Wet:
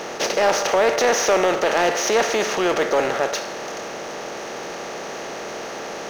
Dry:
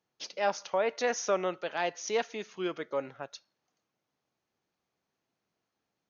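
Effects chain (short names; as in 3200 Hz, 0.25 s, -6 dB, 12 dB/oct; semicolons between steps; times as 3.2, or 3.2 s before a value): per-bin compression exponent 0.4; power-law curve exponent 0.7; gain +4 dB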